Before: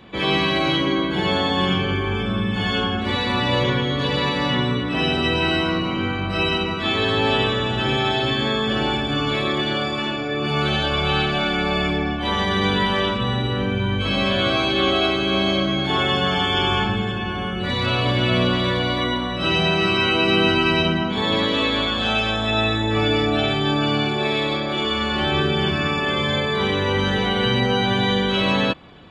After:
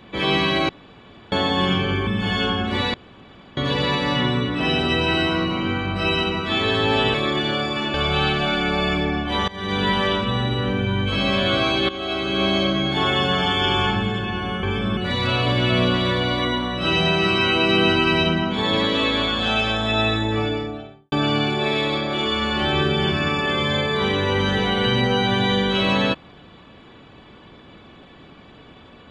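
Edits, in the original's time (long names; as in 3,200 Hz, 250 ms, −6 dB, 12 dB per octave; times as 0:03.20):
0:00.69–0:01.32: fill with room tone
0:02.07–0:02.41: move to 0:17.56
0:03.28–0:03.91: fill with room tone
0:07.48–0:09.36: remove
0:10.16–0:10.87: remove
0:12.41–0:12.81: fade in, from −22.5 dB
0:14.82–0:15.36: fade in, from −15.5 dB
0:22.68–0:23.71: fade out and dull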